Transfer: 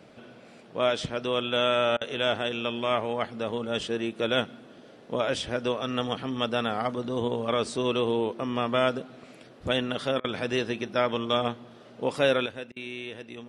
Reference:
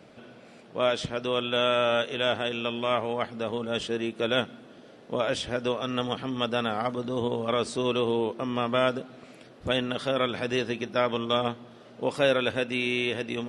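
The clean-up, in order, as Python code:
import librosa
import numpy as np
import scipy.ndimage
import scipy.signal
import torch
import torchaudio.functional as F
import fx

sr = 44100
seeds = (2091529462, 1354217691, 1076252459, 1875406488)

y = fx.fix_interpolate(x, sr, at_s=(1.97, 10.2, 12.72), length_ms=42.0)
y = fx.gain(y, sr, db=fx.steps((0.0, 0.0), (12.46, 10.0)))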